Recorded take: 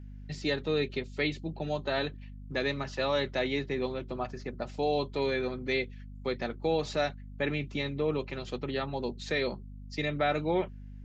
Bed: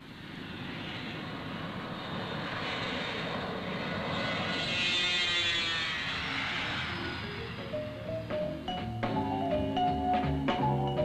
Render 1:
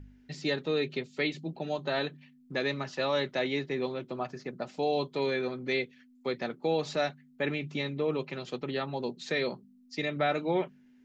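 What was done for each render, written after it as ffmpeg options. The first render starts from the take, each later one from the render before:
ffmpeg -i in.wav -af "bandreject=frequency=50:width_type=h:width=4,bandreject=frequency=100:width_type=h:width=4,bandreject=frequency=150:width_type=h:width=4,bandreject=frequency=200:width_type=h:width=4" out.wav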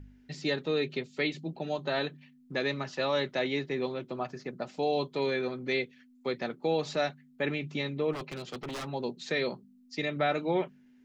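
ffmpeg -i in.wav -filter_complex "[0:a]asplit=3[link_01][link_02][link_03];[link_01]afade=type=out:start_time=8.12:duration=0.02[link_04];[link_02]aeval=exprs='0.0251*(abs(mod(val(0)/0.0251+3,4)-2)-1)':channel_layout=same,afade=type=in:start_time=8.12:duration=0.02,afade=type=out:start_time=8.86:duration=0.02[link_05];[link_03]afade=type=in:start_time=8.86:duration=0.02[link_06];[link_04][link_05][link_06]amix=inputs=3:normalize=0" out.wav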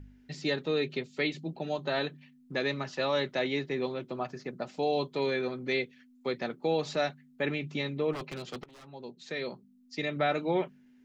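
ffmpeg -i in.wav -filter_complex "[0:a]asplit=2[link_01][link_02];[link_01]atrim=end=8.64,asetpts=PTS-STARTPTS,afade=type=out:start_time=8.636:duration=0.004:curve=hsin:silence=0.0841395[link_03];[link_02]atrim=start=8.64,asetpts=PTS-STARTPTS,afade=type=in:duration=1.53:silence=0.0841395[link_04];[link_03][link_04]concat=n=2:v=0:a=1" out.wav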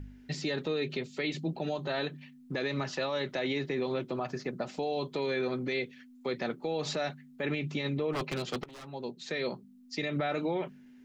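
ffmpeg -i in.wav -af "acontrast=33,alimiter=limit=-23.5dB:level=0:latency=1:release=67" out.wav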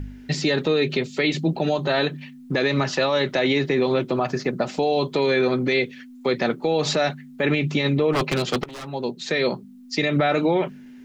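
ffmpeg -i in.wav -af "volume=11.5dB" out.wav

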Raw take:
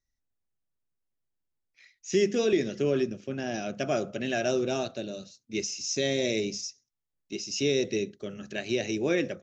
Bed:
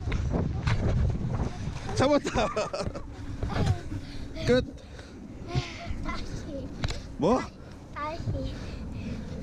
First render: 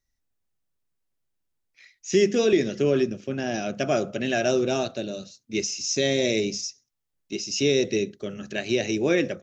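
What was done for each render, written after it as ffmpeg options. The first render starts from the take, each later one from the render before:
ffmpeg -i in.wav -af "volume=4.5dB" out.wav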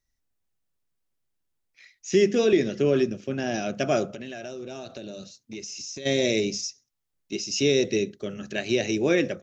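ffmpeg -i in.wav -filter_complex "[0:a]asettb=1/sr,asplit=3[link_01][link_02][link_03];[link_01]atrim=end=2.094[link_04];[link_02]atrim=start=2.09:end=2.93,asetpts=PTS-STARTPTS,afade=type=in:duration=0.004:curve=qsin,afade=type=out:start_time=0.836:duration=0.004:curve=qsin,highshelf=frequency=6900:gain=-7.5[link_05];[link_03]atrim=start=2.926[link_06];[link_04][link_05]acrossfade=duration=0.004:curve1=hsin:curve2=qsin[link_07];[link_07][link_06]acrossfade=duration=0.004:curve1=qsin:curve2=hsin,asplit=3[link_08][link_09][link_10];[link_08]afade=type=out:start_time=4.06:duration=0.02[link_11];[link_09]acompressor=threshold=-33dB:ratio=10:attack=3.2:release=140:knee=1:detection=peak,afade=type=in:start_time=4.06:duration=0.02,afade=type=out:start_time=6.05:duration=0.02[link_12];[link_10]afade=type=in:start_time=6.05:duration=0.02[link_13];[link_11][link_12][link_13]amix=inputs=3:normalize=0" out.wav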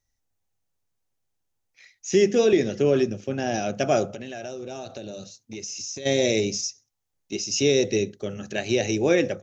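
ffmpeg -i in.wav -af "equalizer=frequency=100:width_type=o:width=0.33:gain=9,equalizer=frequency=500:width_type=o:width=0.33:gain=4,equalizer=frequency=800:width_type=o:width=0.33:gain=7,equalizer=frequency=6300:width_type=o:width=0.33:gain=5" out.wav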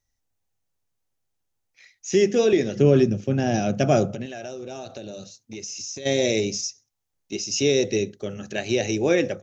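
ffmpeg -i in.wav -filter_complex "[0:a]asettb=1/sr,asplit=3[link_01][link_02][link_03];[link_01]atrim=end=2.764[link_04];[link_02]atrim=start=2.76:end=4.26,asetpts=PTS-STARTPTS,afade=type=in:duration=0.004:curve=qsin,afade=type=out:start_time=1.496:duration=0.004:curve=qsin,equalizer=frequency=140:width_type=o:width=2:gain=10[link_05];[link_03]atrim=start=4.256[link_06];[link_04][link_05]acrossfade=duration=0.004:curve1=hsin:curve2=qsin[link_07];[link_07][link_06]acrossfade=duration=0.004:curve1=qsin:curve2=hsin" out.wav

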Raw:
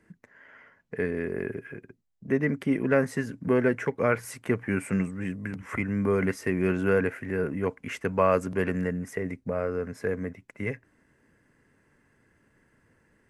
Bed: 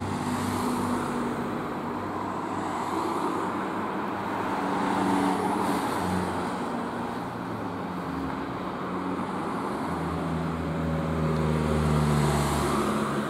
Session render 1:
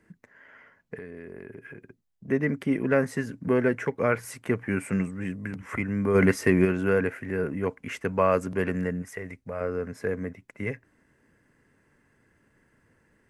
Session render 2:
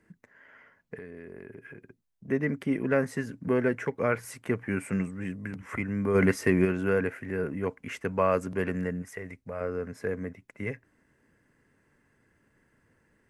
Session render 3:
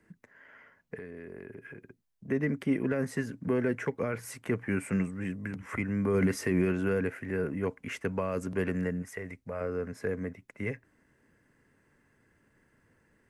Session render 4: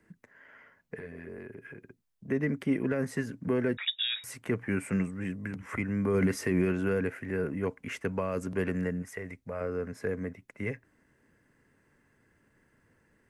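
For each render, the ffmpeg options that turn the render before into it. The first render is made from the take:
ffmpeg -i in.wav -filter_complex "[0:a]asettb=1/sr,asplit=3[link_01][link_02][link_03];[link_01]atrim=end=0.954[link_04];[link_02]atrim=start=0.95:end=2.27,asetpts=PTS-STARTPTS,afade=type=in:duration=0.004:curve=qsin,afade=type=out:start_time=1.316:duration=0.004:curve=qsin,acompressor=threshold=-39dB:ratio=4:attack=3.2:release=140:knee=1:detection=peak[link_05];[link_03]atrim=start=2.266[link_06];[link_04][link_05]acrossfade=duration=0.004:curve1=hsin:curve2=qsin[link_07];[link_07][link_06]acrossfade=duration=0.004:curve1=qsin:curve2=hsin,asplit=3[link_08][link_09][link_10];[link_08]afade=type=out:start_time=6.14:duration=0.02[link_11];[link_09]acontrast=70,afade=type=in:start_time=6.14:duration=0.02,afade=type=out:start_time=6.64:duration=0.02[link_12];[link_10]afade=type=in:start_time=6.64:duration=0.02[link_13];[link_11][link_12][link_13]amix=inputs=3:normalize=0,asettb=1/sr,asplit=3[link_14][link_15][link_16];[link_14]atrim=end=9.024[link_17];[link_15]atrim=start=9.02:end=9.61,asetpts=PTS-STARTPTS,afade=type=in:duration=0.004:curve=qsin,afade=type=out:start_time=0.586:duration=0.004:curve=qsin,equalizer=frequency=250:width=0.55:gain=-9[link_18];[link_16]atrim=start=9.606[link_19];[link_17][link_18]acrossfade=duration=0.004:curve1=hsin:curve2=qsin[link_20];[link_20][link_19]acrossfade=duration=0.004:curve1=qsin:curve2=hsin" out.wav
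ffmpeg -i in.wav -af "volume=-2.5dB" out.wav
ffmpeg -i in.wav -filter_complex "[0:a]alimiter=limit=-17dB:level=0:latency=1:release=30,acrossover=split=420|3000[link_01][link_02][link_03];[link_02]acompressor=threshold=-33dB:ratio=6[link_04];[link_01][link_04][link_03]amix=inputs=3:normalize=0" out.wav
ffmpeg -i in.wav -filter_complex "[0:a]asettb=1/sr,asplit=3[link_01][link_02][link_03];[link_01]atrim=end=0.964[link_04];[link_02]atrim=start=0.96:end=1.47,asetpts=PTS-STARTPTS,afade=type=in:duration=0.004:curve=qsin,afade=type=out:start_time=0.506:duration=0.004:curve=qsin,asplit=2[link_05][link_06];[link_06]adelay=13,volume=-2dB[link_07];[link_05][link_07]amix=inputs=2:normalize=0,atrim=end_sample=22491[link_08];[link_03]atrim=start=1.466[link_09];[link_04][link_08]acrossfade=duration=0.004:curve1=hsin:curve2=qsin[link_10];[link_10][link_09]acrossfade=duration=0.004:curve1=qsin:curve2=hsin,asettb=1/sr,asplit=3[link_11][link_12][link_13];[link_11]atrim=end=3.774[link_14];[link_12]atrim=start=3.77:end=4.24,asetpts=PTS-STARTPTS,afade=type=in:duration=0.004:curve=qsin,afade=type=out:start_time=0.466:duration=0.004:curve=qsin,lowpass=frequency=3300:width_type=q:width=0.5098,lowpass=frequency=3300:width_type=q:width=0.6013,lowpass=frequency=3300:width_type=q:width=0.9,lowpass=frequency=3300:width_type=q:width=2.563,afreqshift=-3900[link_15];[link_13]atrim=start=4.236[link_16];[link_14][link_15]acrossfade=duration=0.004:curve1=hsin:curve2=qsin[link_17];[link_17][link_16]acrossfade=duration=0.004:curve1=qsin:curve2=hsin" out.wav

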